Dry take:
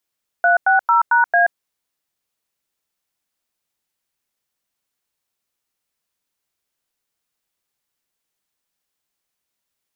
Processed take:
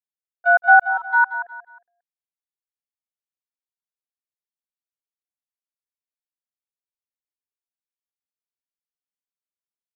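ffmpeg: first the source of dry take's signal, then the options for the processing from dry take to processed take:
-f lavfi -i "aevalsrc='0.211*clip(min(mod(t,0.224),0.129-mod(t,0.224))/0.002,0,1)*(eq(floor(t/0.224),0)*(sin(2*PI*697*mod(t,0.224))+sin(2*PI*1477*mod(t,0.224)))+eq(floor(t/0.224),1)*(sin(2*PI*770*mod(t,0.224))+sin(2*PI*1477*mod(t,0.224)))+eq(floor(t/0.224),2)*(sin(2*PI*941*mod(t,0.224))+sin(2*PI*1336*mod(t,0.224)))+eq(floor(t/0.224),3)*(sin(2*PI*941*mod(t,0.224))+sin(2*PI*1477*mod(t,0.224)))+eq(floor(t/0.224),4)*(sin(2*PI*697*mod(t,0.224))+sin(2*PI*1633*mod(t,0.224))))':duration=1.12:sample_rate=44100"
-filter_complex "[0:a]aecho=1:1:4:0.85,agate=range=-29dB:threshold=-9dB:ratio=16:detection=peak,asplit=2[link_01][link_02];[link_02]aecho=0:1:180|360|540:0.282|0.0874|0.0271[link_03];[link_01][link_03]amix=inputs=2:normalize=0"

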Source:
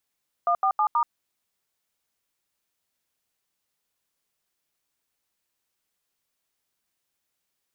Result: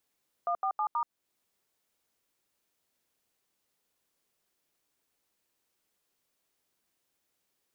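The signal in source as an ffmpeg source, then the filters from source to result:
-f lavfi -i "aevalsrc='0.0841*clip(min(mod(t,0.16),0.08-mod(t,0.16))/0.002,0,1)*(eq(floor(t/0.16),0)*(sin(2*PI*697*mod(t,0.16))+sin(2*PI*1209*mod(t,0.16)))+eq(floor(t/0.16),1)*(sin(2*PI*770*mod(t,0.16))+sin(2*PI*1209*mod(t,0.16)))+eq(floor(t/0.16),2)*(sin(2*PI*852*mod(t,0.16))+sin(2*PI*1209*mod(t,0.16)))+eq(floor(t/0.16),3)*(sin(2*PI*941*mod(t,0.16))+sin(2*PI*1209*mod(t,0.16))))':duration=0.64:sample_rate=44100"
-af "equalizer=frequency=370:width=0.7:gain=5.5,alimiter=limit=-23.5dB:level=0:latency=1:release=339"

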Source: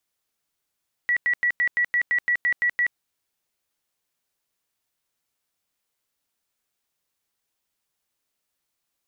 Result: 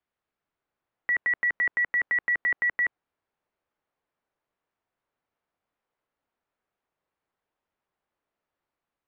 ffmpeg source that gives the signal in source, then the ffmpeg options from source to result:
-f lavfi -i "aevalsrc='0.126*sin(2*PI*1940*mod(t,0.17))*lt(mod(t,0.17),147/1940)':duration=1.87:sample_rate=44100"
-filter_complex "[0:a]lowpass=1900,acrossover=split=320|1300[link_01][link_02][link_03];[link_02]dynaudnorm=framelen=380:gausssize=3:maxgain=4.5dB[link_04];[link_01][link_04][link_03]amix=inputs=3:normalize=0"

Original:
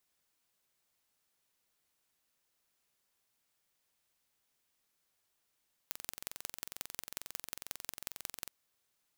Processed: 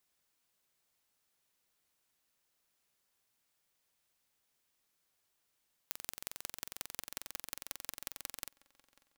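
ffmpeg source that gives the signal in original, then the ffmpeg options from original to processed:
-f lavfi -i "aevalsrc='0.316*eq(mod(n,1986),0)*(0.5+0.5*eq(mod(n,7944),0))':duration=2.58:sample_rate=44100"
-filter_complex "[0:a]asplit=2[link_01][link_02];[link_02]adelay=544,lowpass=frequency=3400:poles=1,volume=-20dB,asplit=2[link_03][link_04];[link_04]adelay=544,lowpass=frequency=3400:poles=1,volume=0.5,asplit=2[link_05][link_06];[link_06]adelay=544,lowpass=frequency=3400:poles=1,volume=0.5,asplit=2[link_07][link_08];[link_08]adelay=544,lowpass=frequency=3400:poles=1,volume=0.5[link_09];[link_01][link_03][link_05][link_07][link_09]amix=inputs=5:normalize=0"

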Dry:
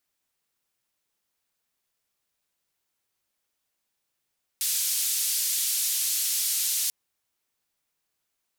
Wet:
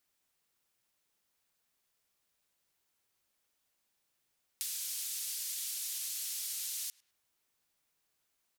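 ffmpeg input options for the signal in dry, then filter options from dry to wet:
-f lavfi -i "anoisesrc=color=white:duration=2.29:sample_rate=44100:seed=1,highpass=frequency=4200,lowpass=frequency=14000,volume=-18dB"
-filter_complex "[0:a]alimiter=limit=-20dB:level=0:latency=1,asplit=2[link_01][link_02];[link_02]adelay=104,lowpass=frequency=1900:poles=1,volume=-20.5dB,asplit=2[link_03][link_04];[link_04]adelay=104,lowpass=frequency=1900:poles=1,volume=0.38,asplit=2[link_05][link_06];[link_06]adelay=104,lowpass=frequency=1900:poles=1,volume=0.38[link_07];[link_01][link_03][link_05][link_07]amix=inputs=4:normalize=0,acompressor=threshold=-38dB:ratio=4"

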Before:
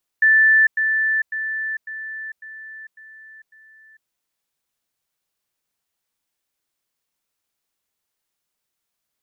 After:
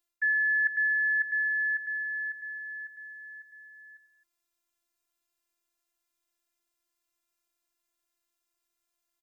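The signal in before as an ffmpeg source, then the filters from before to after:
-f lavfi -i "aevalsrc='pow(10,(-10.5-6*floor(t/0.55))/20)*sin(2*PI*1760*t)*clip(min(mod(t,0.55),0.45-mod(t,0.55))/0.005,0,1)':duration=3.85:sample_rate=44100"
-af "areverse,acompressor=threshold=-23dB:ratio=8,areverse,afftfilt=real='hypot(re,im)*cos(PI*b)':imag='0':win_size=512:overlap=0.75,aecho=1:1:95|264:0.15|0.15"

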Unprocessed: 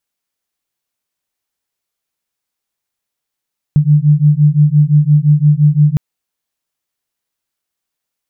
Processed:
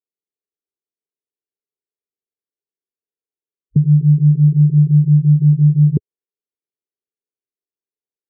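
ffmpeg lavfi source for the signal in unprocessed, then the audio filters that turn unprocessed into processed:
-f lavfi -i "aevalsrc='0.335*(sin(2*PI*146*t)+sin(2*PI*151.8*t))':duration=2.21:sample_rate=44100"
-af "highpass=140,afwtdn=0.1,lowpass=frequency=420:width_type=q:width=5.1"

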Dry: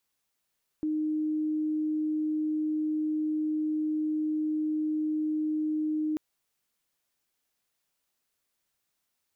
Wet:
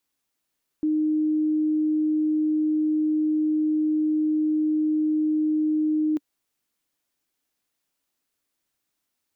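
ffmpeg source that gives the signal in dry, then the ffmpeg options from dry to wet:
-f lavfi -i "sine=frequency=308:duration=5.34:sample_rate=44100,volume=-7.94dB"
-af "equalizer=frequency=290:width=3.2:gain=7.5"

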